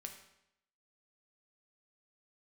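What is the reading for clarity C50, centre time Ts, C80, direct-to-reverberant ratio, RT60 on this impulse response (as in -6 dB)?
8.0 dB, 20 ms, 10.0 dB, 3.5 dB, 0.80 s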